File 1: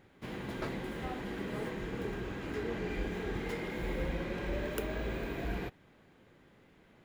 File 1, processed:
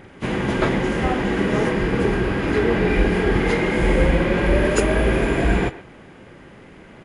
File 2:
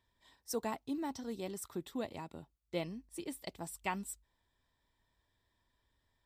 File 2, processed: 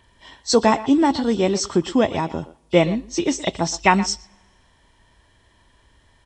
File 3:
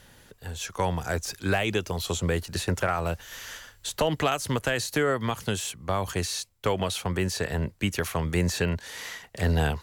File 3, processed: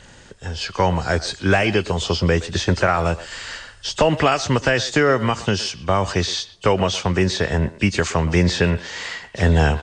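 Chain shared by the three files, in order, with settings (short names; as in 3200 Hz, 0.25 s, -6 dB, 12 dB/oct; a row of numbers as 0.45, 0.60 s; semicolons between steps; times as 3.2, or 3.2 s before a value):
nonlinear frequency compression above 2500 Hz 1.5:1; speakerphone echo 0.12 s, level -15 dB; two-slope reverb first 0.22 s, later 1.7 s, from -19 dB, DRR 19.5 dB; match loudness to -20 LUFS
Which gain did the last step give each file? +18.0, +22.0, +8.5 dB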